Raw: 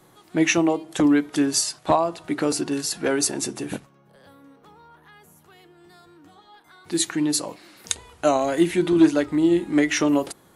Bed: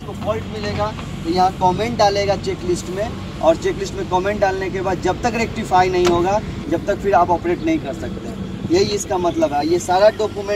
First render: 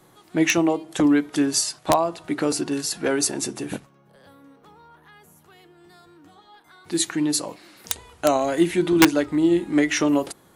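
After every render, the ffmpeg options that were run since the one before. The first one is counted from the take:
-af "aeval=exprs='(mod(2.11*val(0)+1,2)-1)/2.11':c=same"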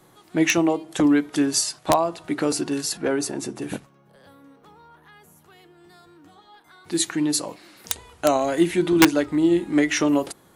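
-filter_complex "[0:a]asettb=1/sr,asplit=3[s0][s1][s2];[s0]atrim=end=2.974[s3];[s1]atrim=start=2.97:end=3.62,asetpts=PTS-STARTPTS,afade=t=in:d=0.004:c=qsin,afade=t=out:st=0.646:d=0.004:c=qsin,highshelf=f=2200:g=-8[s4];[s2]atrim=start=3.616[s5];[s3][s4]acrossfade=d=0.004:c1=hsin:c2=qsin[s6];[s6][s5]acrossfade=d=0.004:c1=qsin:c2=hsin"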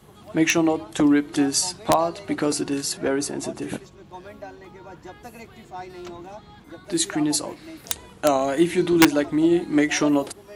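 -filter_complex "[1:a]volume=0.075[s0];[0:a][s0]amix=inputs=2:normalize=0"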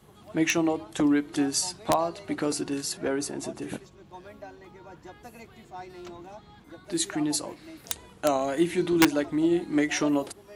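-af "volume=0.562"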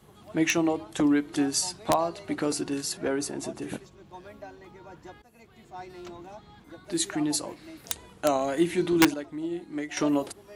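-filter_complex "[0:a]asplit=4[s0][s1][s2][s3];[s0]atrim=end=5.22,asetpts=PTS-STARTPTS,afade=t=out:st=5.216:d=0.004:c=hsin:silence=0.141254[s4];[s1]atrim=start=5.22:end=9.142,asetpts=PTS-STARTPTS,afade=t=in:d=0.59:silence=0.141254[s5];[s2]atrim=start=9.138:end=9.972,asetpts=PTS-STARTPTS,volume=0.355[s6];[s3]atrim=start=9.968[s7];[s4][s5]concat=n=2:v=0:a=1[s8];[s8][s6]acrossfade=d=0.004:c1=hsin:c2=hsin[s9];[s9][s7]acrossfade=d=0.004:c1=hsin:c2=hsin"

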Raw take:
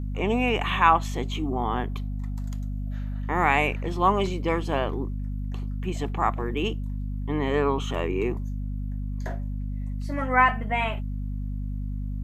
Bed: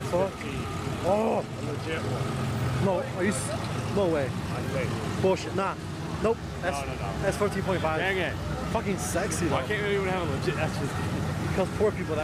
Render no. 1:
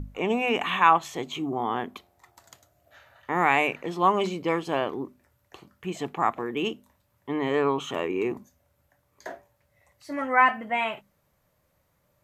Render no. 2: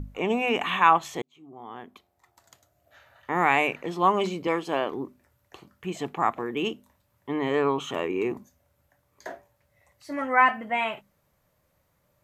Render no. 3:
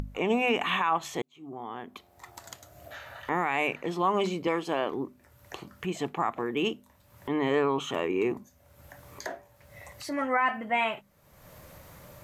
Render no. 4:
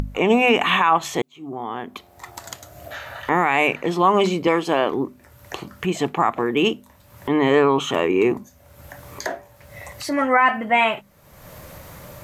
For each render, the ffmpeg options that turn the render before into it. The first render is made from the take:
-af "bandreject=f=50:t=h:w=6,bandreject=f=100:t=h:w=6,bandreject=f=150:t=h:w=6,bandreject=f=200:t=h:w=6,bandreject=f=250:t=h:w=6"
-filter_complex "[0:a]asettb=1/sr,asplit=3[s0][s1][s2];[s0]atrim=end=4.474[s3];[s1]atrim=start=4.47:end=4.92,asetpts=PTS-STARTPTS,afade=t=in:d=0.004:c=qsin,afade=t=out:st=0.446:d=0.004:c=qsin,highpass=190[s4];[s2]atrim=start=4.916[s5];[s3][s4]acrossfade=d=0.004:c1=hsin:c2=qsin[s6];[s6][s5]acrossfade=d=0.004:c1=qsin:c2=hsin,asplit=2[s7][s8];[s7]atrim=end=1.22,asetpts=PTS-STARTPTS,afade=t=out:st=1.216:d=0.004:c=hsin[s9];[s8]atrim=start=1.22,asetpts=PTS-STARTPTS,afade=t=in:d=2.14[s10];[s9][s10]concat=n=2:v=0:a=1"
-af "alimiter=limit=0.168:level=0:latency=1:release=93,acompressor=mode=upward:threshold=0.0251:ratio=2.5"
-af "volume=2.99"

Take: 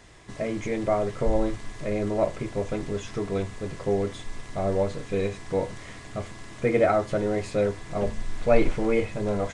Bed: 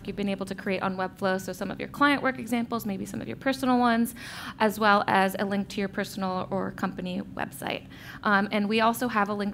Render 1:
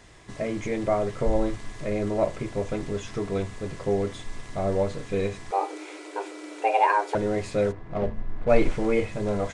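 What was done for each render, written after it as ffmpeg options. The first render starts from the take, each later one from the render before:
-filter_complex "[0:a]asettb=1/sr,asplit=3[s0][s1][s2];[s0]atrim=end=5.514[s3];[s1]atrim=start=5.51:end=7.15,asetpts=PTS-STARTPTS,afade=t=in:d=0.004:c=qsin,afade=t=out:st=1.636:d=0.004:c=qsin,afreqshift=300[s4];[s2]atrim=start=7.146[s5];[s3][s4]acrossfade=d=0.004:c1=hsin:c2=qsin[s6];[s6][s5]acrossfade=d=0.004:c1=qsin:c2=hsin,asplit=3[s7][s8][s9];[s7]afade=t=out:st=7.71:d=0.02[s10];[s8]adynamicsmooth=sensitivity=3:basefreq=1100,afade=t=in:st=7.71:d=0.02,afade=t=out:st=8.48:d=0.02[s11];[s9]afade=t=in:st=8.48:d=0.02[s12];[s10][s11][s12]amix=inputs=3:normalize=0"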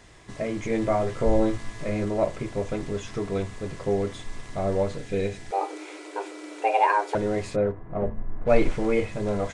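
-filter_complex "[0:a]asettb=1/sr,asplit=3[s0][s1][s2];[s0]atrim=end=0.684[s3];[s1]atrim=start=0.68:end=2.05,asetpts=PTS-STARTPTS,afade=t=in:d=0.004:c=qsin,afade=t=out:st=1.366:d=0.004:c=qsin,asplit=2[s4][s5];[s5]adelay=18,volume=0.631[s6];[s4][s6]amix=inputs=2:normalize=0,atrim=end_sample=60417[s7];[s2]atrim=start=2.046[s8];[s3][s7]acrossfade=d=0.004:c1=hsin:c2=qsin[s9];[s9][s8]acrossfade=d=0.004:c1=qsin:c2=hsin,asettb=1/sr,asplit=3[s10][s11][s12];[s10]atrim=end=4.974[s13];[s11]atrim=start=4.97:end=5.61,asetpts=PTS-STARTPTS,afade=t=in:d=0.004:c=qsin,afade=t=out:st=0.636:d=0.004:c=qsin,equalizer=f=1100:t=o:w=0.26:g=-14[s14];[s12]atrim=start=5.606[s15];[s13][s14]acrossfade=d=0.004:c1=hsin:c2=qsin[s16];[s16][s15]acrossfade=d=0.004:c1=qsin:c2=hsin,asplit=3[s17][s18][s19];[s17]afade=t=out:st=7.55:d=0.02[s20];[s18]lowpass=1500,afade=t=in:st=7.55:d=0.02,afade=t=out:st=8.44:d=0.02[s21];[s19]afade=t=in:st=8.44:d=0.02[s22];[s20][s21][s22]amix=inputs=3:normalize=0"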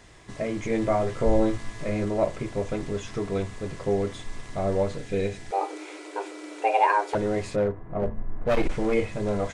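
-filter_complex "[0:a]asettb=1/sr,asplit=3[s0][s1][s2];[s0]atrim=end=7.114[s3];[s1]atrim=start=7.11:end=8.94,asetpts=PTS-STARTPTS,afade=t=in:d=0.004:c=qsin,afade=t=out:st=1.826:d=0.004:c=qsin,asoftclip=type=hard:threshold=0.126[s4];[s2]atrim=start=8.936[s5];[s3][s4]acrossfade=d=0.004:c1=hsin:c2=qsin[s6];[s6][s5]acrossfade=d=0.004:c1=qsin:c2=hsin"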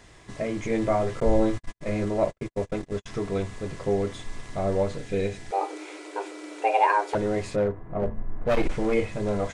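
-filter_complex "[0:a]asettb=1/sr,asplit=3[s0][s1][s2];[s0]atrim=end=1.204[s3];[s1]atrim=start=1.2:end=3.06,asetpts=PTS-STARTPTS,afade=t=in:d=0.004:c=qsin,afade=t=out:st=1.856:d=0.004:c=qsin,agate=range=0.00141:threshold=0.0282:ratio=16:release=100:detection=peak[s4];[s2]atrim=start=3.056[s5];[s3][s4]acrossfade=d=0.004:c1=hsin:c2=qsin[s6];[s6][s5]acrossfade=d=0.004:c1=qsin:c2=hsin"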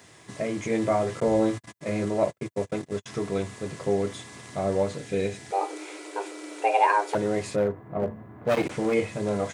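-af "highpass=f=100:w=0.5412,highpass=f=100:w=1.3066,highshelf=f=8400:g=10"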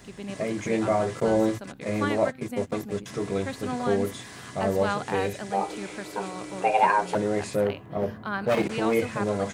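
-filter_complex "[1:a]volume=0.376[s0];[0:a][s0]amix=inputs=2:normalize=0"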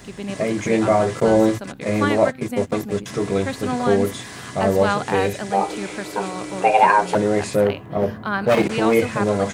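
-af "volume=2.24,alimiter=limit=0.708:level=0:latency=1"

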